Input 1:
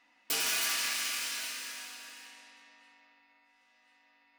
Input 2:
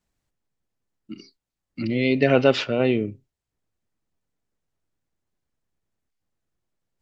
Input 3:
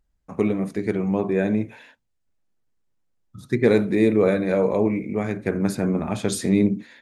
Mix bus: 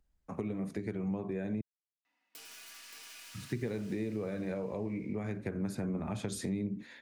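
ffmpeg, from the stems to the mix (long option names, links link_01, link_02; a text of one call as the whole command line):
ffmpeg -i stem1.wav -i stem2.wav -i stem3.wav -filter_complex "[0:a]acompressor=threshold=-41dB:ratio=2,adelay=2050,volume=-13dB,asplit=2[link_01][link_02];[link_02]volume=-4dB[link_03];[2:a]volume=-4dB,asplit=3[link_04][link_05][link_06];[link_04]atrim=end=1.61,asetpts=PTS-STARTPTS,afade=type=out:start_time=1.606:duration=0.004:curve=hsin[link_07];[link_05]atrim=start=1.61:end=2.39,asetpts=PTS-STARTPTS,volume=0[link_08];[link_06]atrim=start=2.39,asetpts=PTS-STARTPTS,afade=type=in:duration=0.004:curve=hsin[link_09];[link_07][link_08][link_09]concat=n=3:v=0:a=1,acompressor=threshold=-28dB:ratio=3,volume=0dB[link_10];[link_03]aecho=0:1:575:1[link_11];[link_01][link_10][link_11]amix=inputs=3:normalize=0,acrossover=split=160[link_12][link_13];[link_13]acompressor=threshold=-39dB:ratio=2.5[link_14];[link_12][link_14]amix=inputs=2:normalize=0" out.wav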